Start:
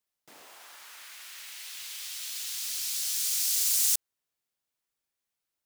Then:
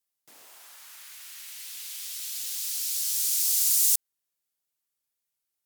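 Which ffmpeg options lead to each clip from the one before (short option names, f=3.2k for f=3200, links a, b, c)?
-af "aemphasis=mode=production:type=cd,volume=-4.5dB"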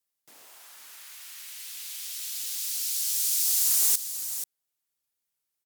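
-af "volume=17dB,asoftclip=hard,volume=-17dB,aecho=1:1:483:0.299"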